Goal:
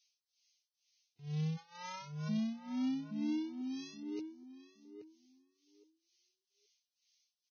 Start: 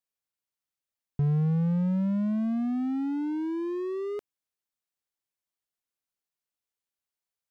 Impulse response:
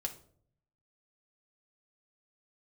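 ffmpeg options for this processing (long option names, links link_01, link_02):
-filter_complex "[0:a]asettb=1/sr,asplit=3[link_01][link_02][link_03];[link_01]atrim=end=3.614[link_04];[link_02]atrim=start=3.61:end=4.03,asetpts=PTS-STARTPTS,afade=type=in:duration=0.004:curve=qsin,afade=type=out:start_time=0.416:duration=0.004:curve=qsin,aderivative[link_05];[link_03]atrim=start=4.026[link_06];[link_04][link_05]acrossfade=duration=0.004:curve1=hsin:curve2=qsin[link_07];[link_07][link_06]acrossfade=duration=0.004:curve1=qsin:curve2=hsin,acrossover=split=410[link_08][link_09];[link_08]alimiter=level_in=3.5dB:limit=-24dB:level=0:latency=1,volume=-3.5dB[link_10];[link_09]acompressor=threshold=-52dB:ratio=4[link_11];[link_10][link_11]amix=inputs=2:normalize=0,aexciter=amount=15.3:drive=1.4:freq=2200,asplit=3[link_12][link_13][link_14];[link_12]afade=type=out:start_time=1.56:duration=0.02[link_15];[link_13]aeval=exprs='(mod(53.1*val(0)+1,2)-1)/53.1':channel_layout=same,afade=type=in:start_time=1.56:duration=0.02,afade=type=out:start_time=2.28:duration=0.02[link_16];[link_14]afade=type=in:start_time=2.28:duration=0.02[link_17];[link_15][link_16][link_17]amix=inputs=3:normalize=0,tremolo=f=2.1:d=0.93,asplit=2[link_18][link_19];[link_19]adelay=822,lowpass=frequency=1000:poles=1,volume=-5.5dB,asplit=2[link_20][link_21];[link_21]adelay=822,lowpass=frequency=1000:poles=1,volume=0.21,asplit=2[link_22][link_23];[link_23]adelay=822,lowpass=frequency=1000:poles=1,volume=0.21[link_24];[link_20][link_22][link_24]amix=inputs=3:normalize=0[link_25];[link_18][link_25]amix=inputs=2:normalize=0,volume=-3dB" -ar 16000 -c:a libvorbis -b:a 16k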